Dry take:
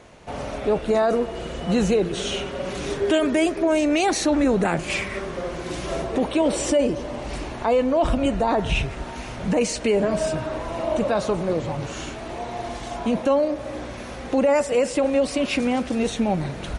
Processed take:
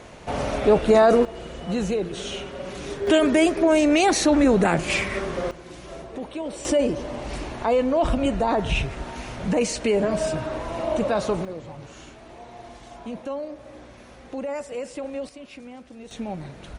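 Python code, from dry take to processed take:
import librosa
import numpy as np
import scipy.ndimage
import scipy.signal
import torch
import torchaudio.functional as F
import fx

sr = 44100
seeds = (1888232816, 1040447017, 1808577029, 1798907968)

y = fx.gain(x, sr, db=fx.steps((0.0, 4.5), (1.25, -5.0), (3.07, 2.0), (5.51, -11.0), (6.65, -1.0), (11.45, -11.5), (15.29, -19.0), (16.11, -9.5)))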